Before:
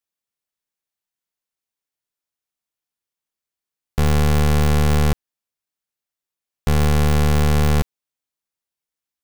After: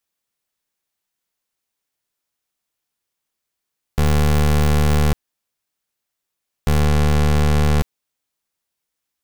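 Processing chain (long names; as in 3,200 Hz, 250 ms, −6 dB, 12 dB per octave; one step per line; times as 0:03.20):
0:06.80–0:07.81: high-shelf EQ 7,300 Hz −8.5 dB
soft clipping −22 dBFS, distortion −37 dB
level +7.5 dB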